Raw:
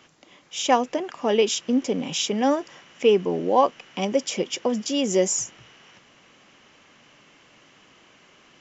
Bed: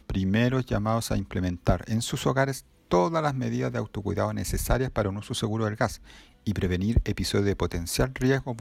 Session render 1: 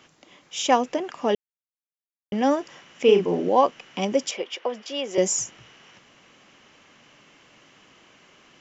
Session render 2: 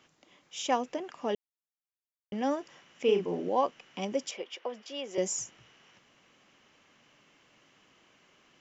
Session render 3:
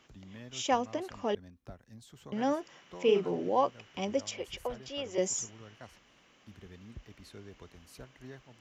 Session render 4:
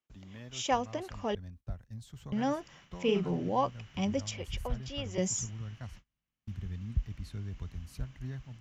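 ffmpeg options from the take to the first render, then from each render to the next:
ffmpeg -i in.wav -filter_complex "[0:a]asettb=1/sr,asplit=3[link_01][link_02][link_03];[link_01]atrim=end=3.044[link_04];[link_02]atrim=start=3.04:end=3.49,asetpts=PTS-STARTPTS,afade=type=in:duration=0.004:curve=qsin,afade=type=out:start_time=0.446:duration=0.004:curve=qsin,asplit=2[link_05][link_06];[link_06]adelay=40,volume=-4.5dB[link_07];[link_05][link_07]amix=inputs=2:normalize=0,atrim=end_sample=19845[link_08];[link_03]atrim=start=3.486[link_09];[link_04][link_08]acrossfade=duration=0.004:curve1=hsin:curve2=qsin[link_10];[link_10][link_09]acrossfade=duration=0.004:curve1=qsin:curve2=hsin,asettb=1/sr,asplit=3[link_11][link_12][link_13];[link_11]atrim=end=4.314[link_14];[link_12]atrim=start=4.31:end=5.18,asetpts=PTS-STARTPTS,afade=type=in:duration=0.004:curve=qsin,afade=type=out:start_time=0.866:duration=0.004:curve=qsin,acrossover=split=400 4200:gain=0.0794 1 0.112[link_15][link_16][link_17];[link_15][link_16][link_17]amix=inputs=3:normalize=0[link_18];[link_13]atrim=start=5.176[link_19];[link_14][link_18]acrossfade=duration=0.004:curve1=hsin:curve2=qsin[link_20];[link_20][link_19]acrossfade=duration=0.004:curve1=qsin:curve2=hsin,asplit=3[link_21][link_22][link_23];[link_21]atrim=end=1.35,asetpts=PTS-STARTPTS,afade=type=out:start_time=1.346:duration=0.004:curve=hsin[link_24];[link_22]atrim=start=1.35:end=2.32,asetpts=PTS-STARTPTS,volume=0[link_25];[link_23]atrim=start=2.32,asetpts=PTS-STARTPTS,afade=type=in:duration=0.004:curve=hsin[link_26];[link_24][link_25][link_26]concat=n=3:v=0:a=1" out.wav
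ffmpeg -i in.wav -af "volume=-9dB" out.wav
ffmpeg -i in.wav -i bed.wav -filter_complex "[1:a]volume=-25dB[link_01];[0:a][link_01]amix=inputs=2:normalize=0" out.wav
ffmpeg -i in.wav -af "agate=range=-31dB:threshold=-58dB:ratio=16:detection=peak,asubboost=boost=10.5:cutoff=130" out.wav

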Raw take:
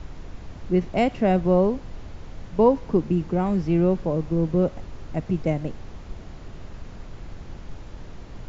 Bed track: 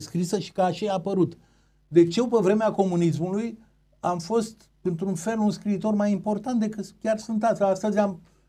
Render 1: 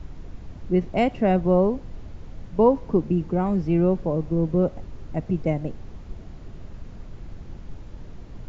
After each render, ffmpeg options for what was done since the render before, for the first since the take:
ffmpeg -i in.wav -af "afftdn=noise_reduction=6:noise_floor=-41" out.wav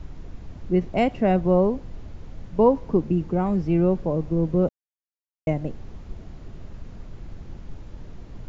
ffmpeg -i in.wav -filter_complex "[0:a]asplit=3[link_01][link_02][link_03];[link_01]atrim=end=4.69,asetpts=PTS-STARTPTS,afade=type=out:start_time=4.686:duration=0.004:curve=hsin[link_04];[link_02]atrim=start=4.69:end=5.47,asetpts=PTS-STARTPTS,volume=0[link_05];[link_03]atrim=start=5.47,asetpts=PTS-STARTPTS,afade=type=in:duration=0.004:curve=hsin[link_06];[link_04][link_05][link_06]concat=n=3:v=0:a=1" out.wav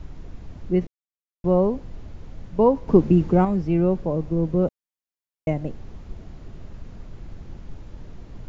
ffmpeg -i in.wav -filter_complex "[0:a]asplit=5[link_01][link_02][link_03][link_04][link_05];[link_01]atrim=end=0.87,asetpts=PTS-STARTPTS,afade=type=out:start_time=0.866:duration=0.004:curve=hsin[link_06];[link_02]atrim=start=0.87:end=1.44,asetpts=PTS-STARTPTS,volume=0[link_07];[link_03]atrim=start=1.44:end=2.882,asetpts=PTS-STARTPTS,afade=type=in:duration=0.004:curve=hsin[link_08];[link_04]atrim=start=2.878:end=3.452,asetpts=PTS-STARTPTS,volume=6dB[link_09];[link_05]atrim=start=3.448[link_10];[link_06][link_07][link_08]concat=n=3:v=0:a=1[link_11];[link_11][link_09]acrossfade=duration=0.004:curve1=hsin:curve2=hsin[link_12];[link_12][link_10]acrossfade=duration=0.004:curve1=hsin:curve2=hsin" out.wav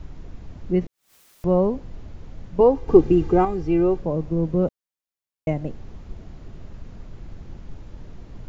ffmpeg -i in.wav -filter_complex "[0:a]asplit=3[link_01][link_02][link_03];[link_01]afade=type=out:start_time=0.69:duration=0.02[link_04];[link_02]acompressor=mode=upward:threshold=-23dB:ratio=2.5:attack=3.2:release=140:knee=2.83:detection=peak,afade=type=in:start_time=0.69:duration=0.02,afade=type=out:start_time=1.63:duration=0.02[link_05];[link_03]afade=type=in:start_time=1.63:duration=0.02[link_06];[link_04][link_05][link_06]amix=inputs=3:normalize=0,asettb=1/sr,asplit=3[link_07][link_08][link_09];[link_07]atrim=end=2.604[link_10];[link_08]atrim=start=2.6:end=3.99,asetpts=PTS-STARTPTS,afade=type=in:duration=0.004:curve=qsin,afade=type=out:start_time=1.386:duration=0.004:curve=qsin,aecho=1:1:2.5:0.69,atrim=end_sample=61299[link_11];[link_09]atrim=start=3.986[link_12];[link_10][link_11]acrossfade=duration=0.004:curve1=hsin:curve2=qsin[link_13];[link_13][link_12]acrossfade=duration=0.004:curve1=qsin:curve2=hsin" out.wav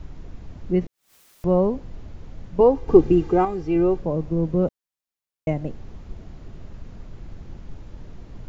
ffmpeg -i in.wav -filter_complex "[0:a]asettb=1/sr,asplit=3[link_01][link_02][link_03];[link_01]atrim=end=3.204[link_04];[link_02]atrim=start=3.2:end=3.76,asetpts=PTS-STARTPTS,afade=type=in:duration=0.004:curve=qsin,afade=type=out:start_time=0.556:duration=0.004:curve=qsin,lowshelf=frequency=180:gain=-6[link_05];[link_03]atrim=start=3.756[link_06];[link_04][link_05]acrossfade=duration=0.004:curve1=hsin:curve2=qsin[link_07];[link_07][link_06]acrossfade=duration=0.004:curve1=qsin:curve2=hsin" out.wav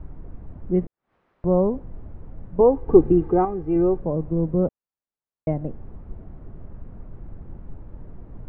ffmpeg -i in.wav -af "lowpass=1400,aemphasis=mode=reproduction:type=75kf" out.wav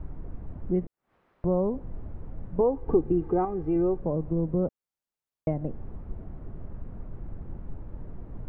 ffmpeg -i in.wav -af "acompressor=threshold=-26dB:ratio=2" out.wav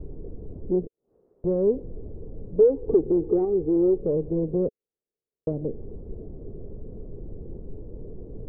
ffmpeg -i in.wav -af "asoftclip=type=tanh:threshold=-24dB,lowpass=frequency=440:width_type=q:width=4.9" out.wav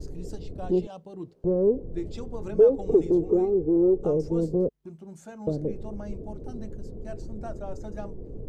ffmpeg -i in.wav -i bed.wav -filter_complex "[1:a]volume=-16.5dB[link_01];[0:a][link_01]amix=inputs=2:normalize=0" out.wav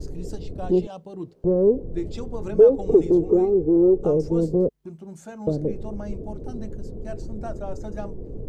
ffmpeg -i in.wav -af "volume=4dB" out.wav

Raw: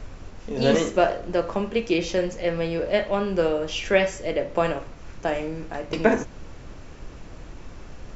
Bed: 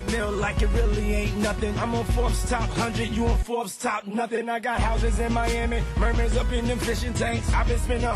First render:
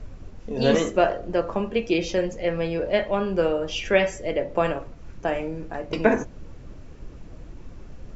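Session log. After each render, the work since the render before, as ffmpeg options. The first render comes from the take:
ffmpeg -i in.wav -af "afftdn=noise_reduction=8:noise_floor=-41" out.wav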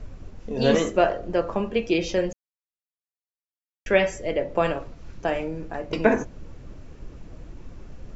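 ffmpeg -i in.wav -filter_complex "[0:a]asettb=1/sr,asplit=3[link_01][link_02][link_03];[link_01]atrim=end=4.624[link_04];[link_02]atrim=start=4.62:end=5.44,asetpts=PTS-STARTPTS,afade=type=in:duration=0.004:curve=qsin,afade=type=out:start_time=0.816:duration=0.004:curve=qsin,equalizer=frequency=4300:width_type=o:width=0.97:gain=4[link_05];[link_03]atrim=start=5.436[link_06];[link_04][link_05]acrossfade=duration=0.004:curve1=hsin:curve2=qsin[link_07];[link_07][link_06]acrossfade=duration=0.004:curve1=qsin:curve2=hsin,asplit=3[link_08][link_09][link_10];[link_08]atrim=end=2.33,asetpts=PTS-STARTPTS,afade=type=out:start_time=2.326:duration=0.004:curve=hsin[link_11];[link_09]atrim=start=2.33:end=3.86,asetpts=PTS-STARTPTS,volume=0[link_12];[link_10]atrim=start=3.86,asetpts=PTS-STARTPTS,afade=type=in:duration=0.004:curve=hsin[link_13];[link_11][link_12][link_13]concat=n=3:v=0:a=1" out.wav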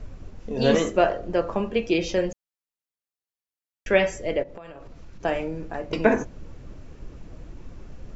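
ffmpeg -i in.wav -filter_complex "[0:a]asplit=3[link_01][link_02][link_03];[link_01]afade=type=out:start_time=4.42:duration=0.02[link_04];[link_02]acompressor=threshold=-37dB:ratio=12:attack=3.2:release=140:knee=1:detection=peak,afade=type=in:start_time=4.42:duration=0.02,afade=type=out:start_time=5.2:duration=0.02[link_05];[link_03]afade=type=in:start_time=5.2:duration=0.02[link_06];[link_04][link_05][link_06]amix=inputs=3:normalize=0" out.wav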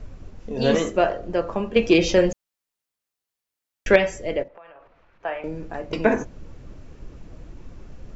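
ffmpeg -i in.wav -filter_complex "[0:a]asettb=1/sr,asplit=3[link_01][link_02][link_03];[link_01]atrim=end=1.764[link_04];[link_02]atrim=start=1.76:end=3.96,asetpts=PTS-STARTPTS,afade=type=in:duration=0.004:curve=qsin,afade=type=out:start_time=2.196:duration=0.004:curve=qsin,acontrast=76[link_05];[link_03]atrim=start=3.956[link_06];[link_04][link_05]acrossfade=duration=0.004:curve1=hsin:curve2=qsin[link_07];[link_07][link_06]acrossfade=duration=0.004:curve1=qsin:curve2=hsin,asettb=1/sr,asplit=3[link_08][link_09][link_10];[link_08]atrim=end=4.484[link_11];[link_09]atrim=start=4.48:end=5.44,asetpts=PTS-STARTPTS,afade=type=in:duration=0.004:curve=qsin,afade=type=out:start_time=0.956:duration=0.004:curve=qsin,acrossover=split=540 2900:gain=0.126 1 0.0631[link_12][link_13][link_14];[link_12][link_13][link_14]amix=inputs=3:normalize=0[link_15];[link_10]atrim=start=5.436[link_16];[link_11][link_15]acrossfade=duration=0.004:curve1=hsin:curve2=qsin[link_17];[link_17][link_16]acrossfade=duration=0.004:curve1=qsin:curve2=hsin" out.wav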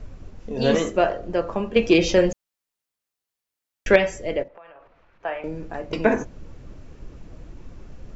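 ffmpeg -i in.wav -af anull out.wav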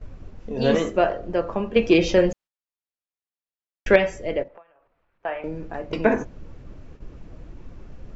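ffmpeg -i in.wav -af "agate=range=-12dB:threshold=-42dB:ratio=16:detection=peak,highshelf=frequency=6900:gain=-12" out.wav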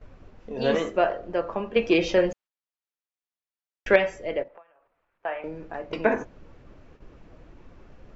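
ffmpeg -i in.wav -af "lowpass=frequency=3600:poles=1,lowshelf=frequency=310:gain=-10" out.wav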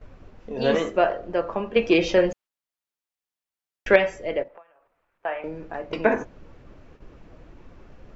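ffmpeg -i in.wav -af "volume=2dB" out.wav

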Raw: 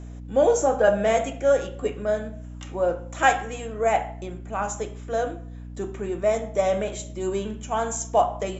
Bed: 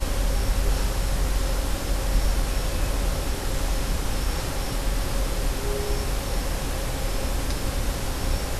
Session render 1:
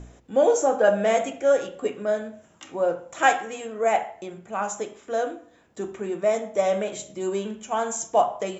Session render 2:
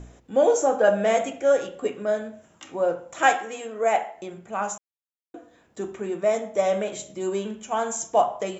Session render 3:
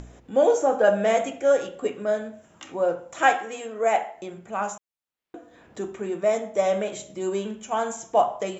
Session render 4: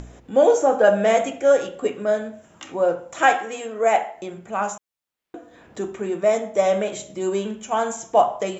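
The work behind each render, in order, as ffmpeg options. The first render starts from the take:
ffmpeg -i in.wav -af "bandreject=frequency=60:width_type=h:width=4,bandreject=frequency=120:width_type=h:width=4,bandreject=frequency=180:width_type=h:width=4,bandreject=frequency=240:width_type=h:width=4,bandreject=frequency=300:width_type=h:width=4" out.wav
ffmpeg -i in.wav -filter_complex "[0:a]asettb=1/sr,asplit=3[link_01][link_02][link_03];[link_01]atrim=end=3.344[link_04];[link_02]atrim=start=3.34:end=4.18,asetpts=PTS-STARTPTS,afade=type=in:duration=0.004:curve=qsin,afade=type=out:start_time=0.836:duration=0.004:curve=qsin,highpass=210[link_05];[link_03]atrim=start=4.176[link_06];[link_04][link_05]acrossfade=duration=0.004:curve1=hsin:curve2=qsin[link_07];[link_07][link_06]acrossfade=duration=0.004:curve1=qsin:curve2=hsin,asplit=3[link_08][link_09][link_10];[link_08]atrim=end=4.78,asetpts=PTS-STARTPTS,afade=type=out:start_time=4.776:duration=0.004:curve=hsin[link_11];[link_09]atrim=start=4.78:end=5.34,asetpts=PTS-STARTPTS,volume=0[link_12];[link_10]atrim=start=5.34,asetpts=PTS-STARTPTS,afade=type=in:duration=0.004:curve=hsin[link_13];[link_11][link_12][link_13]concat=n=3:v=0:a=1" out.wav
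ffmpeg -i in.wav -filter_complex "[0:a]acrossover=split=3700[link_01][link_02];[link_01]acompressor=mode=upward:threshold=-39dB:ratio=2.5[link_03];[link_02]alimiter=level_in=5.5dB:limit=-24dB:level=0:latency=1:release=276,volume=-5.5dB[link_04];[link_03][link_04]amix=inputs=2:normalize=0" out.wav
ffmpeg -i in.wav -af "volume=3.5dB,alimiter=limit=-3dB:level=0:latency=1" out.wav

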